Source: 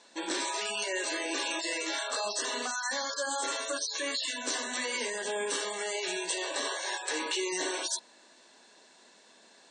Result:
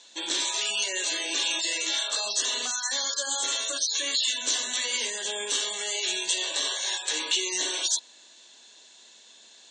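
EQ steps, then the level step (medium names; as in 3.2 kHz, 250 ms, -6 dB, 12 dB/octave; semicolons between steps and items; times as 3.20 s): peaking EQ 3.4 kHz +14.5 dB 0.88 oct; peaking EQ 6.8 kHz +13.5 dB 0.45 oct; hum notches 50/100/150/200/250 Hz; -4.0 dB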